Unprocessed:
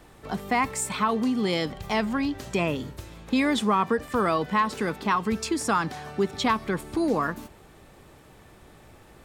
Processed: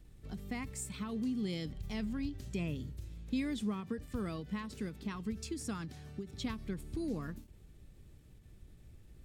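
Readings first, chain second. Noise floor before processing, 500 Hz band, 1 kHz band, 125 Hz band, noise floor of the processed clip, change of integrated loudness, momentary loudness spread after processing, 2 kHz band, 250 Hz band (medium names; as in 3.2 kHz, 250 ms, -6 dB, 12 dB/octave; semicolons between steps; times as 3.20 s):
-52 dBFS, -17.5 dB, -24.5 dB, -6.5 dB, -59 dBFS, -13.5 dB, 22 LU, -18.5 dB, -10.5 dB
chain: amplifier tone stack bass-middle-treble 10-0-1; endings held to a fixed fall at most 150 dB/s; trim +8 dB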